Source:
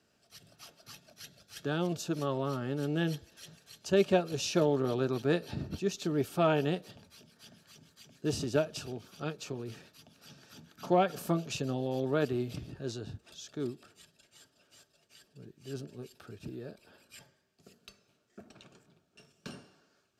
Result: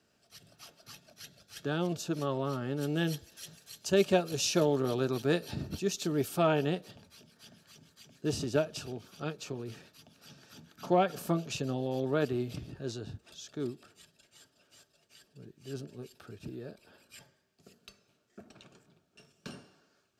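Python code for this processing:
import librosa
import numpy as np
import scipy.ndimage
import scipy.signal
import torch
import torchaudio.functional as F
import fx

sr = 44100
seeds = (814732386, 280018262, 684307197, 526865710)

y = fx.high_shelf(x, sr, hz=5000.0, db=8.5, at=(2.81, 6.42))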